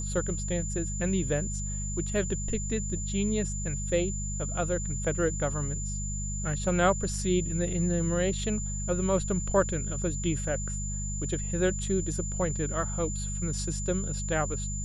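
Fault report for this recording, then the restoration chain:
hum 50 Hz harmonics 4 -34 dBFS
whine 7.1 kHz -36 dBFS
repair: band-stop 7.1 kHz, Q 30; de-hum 50 Hz, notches 4

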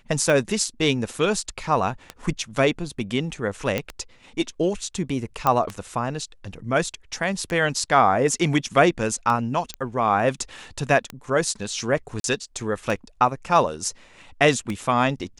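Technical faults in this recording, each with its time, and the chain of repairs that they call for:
tick 33 1/3 rpm
3.78 s: pop -10 dBFS
5.47 s: pop -7 dBFS
9.74 s: pop -14 dBFS
12.20–12.24 s: dropout 42 ms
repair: de-click; interpolate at 12.20 s, 42 ms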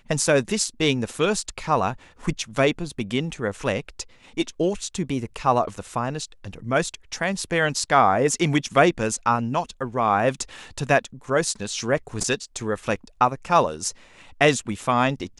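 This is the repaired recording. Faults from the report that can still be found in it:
nothing left

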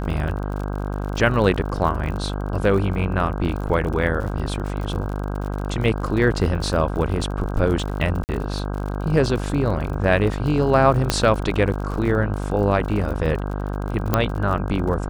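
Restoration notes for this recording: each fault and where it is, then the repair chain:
buzz 50 Hz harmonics 32 -26 dBFS
crackle 50 per s -29 dBFS
8.24–8.29 s: dropout 49 ms
11.10 s: pop -3 dBFS
14.14 s: pop -4 dBFS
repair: de-click; de-hum 50 Hz, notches 32; interpolate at 8.24 s, 49 ms

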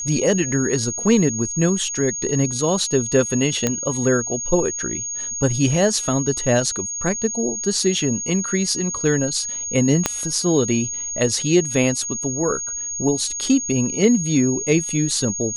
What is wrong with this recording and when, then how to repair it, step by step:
whine 6.6 kHz -25 dBFS
3.67 s: pop -5 dBFS
10.06 s: pop -2 dBFS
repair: de-click; band-stop 6.6 kHz, Q 30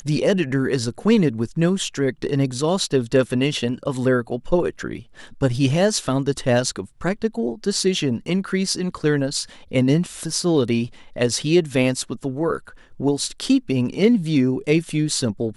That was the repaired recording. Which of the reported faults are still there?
10.06 s: pop

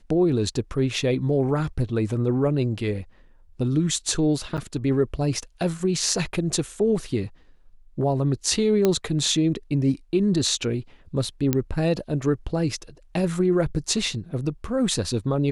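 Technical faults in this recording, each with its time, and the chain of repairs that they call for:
4.57–4.58 s: dropout 8.3 ms
8.85 s: pop -7 dBFS
11.53 s: pop -8 dBFS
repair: de-click; interpolate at 4.57 s, 8.3 ms

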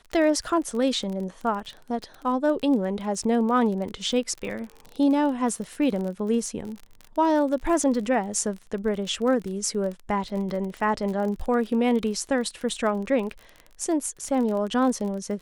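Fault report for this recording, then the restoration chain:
crackle 30 per s -31 dBFS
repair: de-click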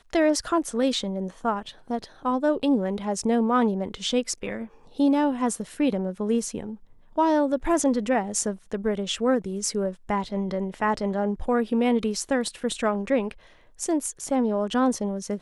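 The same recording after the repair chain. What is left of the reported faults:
nothing left

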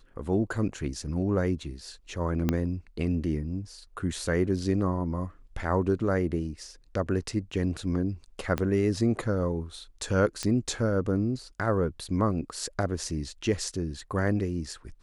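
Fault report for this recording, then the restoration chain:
2.49 s: pop -12 dBFS
8.58 s: pop -14 dBFS
10.43 s: pop -16 dBFS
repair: de-click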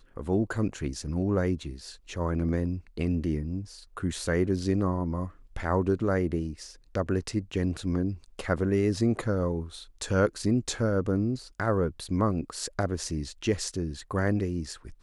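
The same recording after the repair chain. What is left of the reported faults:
2.49 s: pop
8.58 s: pop

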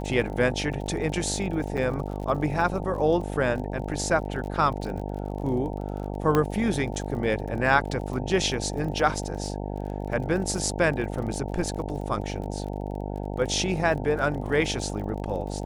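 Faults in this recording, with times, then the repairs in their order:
buzz 50 Hz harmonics 18 -32 dBFS
crackle 38 per s -35 dBFS
1.77–1.78 s: dropout 6.9 ms
6.35 s: pop -10 dBFS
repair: de-click; de-hum 50 Hz, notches 18; interpolate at 1.77 s, 6.9 ms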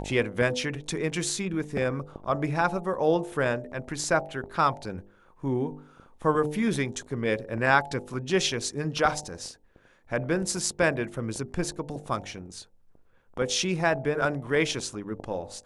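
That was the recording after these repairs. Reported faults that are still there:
nothing left

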